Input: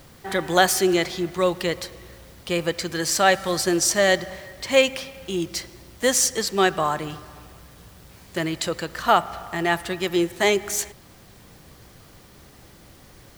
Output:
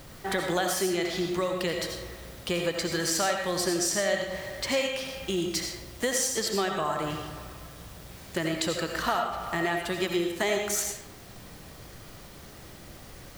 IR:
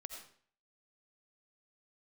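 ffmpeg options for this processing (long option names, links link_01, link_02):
-filter_complex "[0:a]acompressor=threshold=-27dB:ratio=5[link_01];[1:a]atrim=start_sample=2205[link_02];[link_01][link_02]afir=irnorm=-1:irlink=0,volume=6.5dB"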